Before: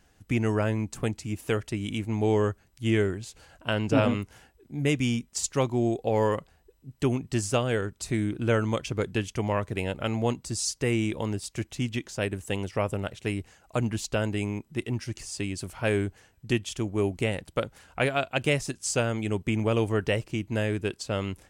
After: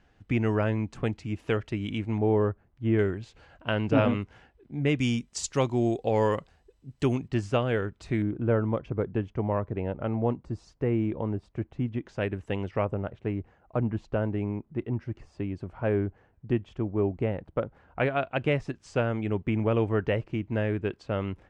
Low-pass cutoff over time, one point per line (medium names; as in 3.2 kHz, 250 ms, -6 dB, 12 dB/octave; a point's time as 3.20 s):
3.2 kHz
from 2.18 s 1.3 kHz
from 2.99 s 2.9 kHz
from 4.99 s 6.5 kHz
from 7.28 s 2.7 kHz
from 8.22 s 1.1 kHz
from 12.06 s 2.2 kHz
from 12.85 s 1.2 kHz
from 17.99 s 2 kHz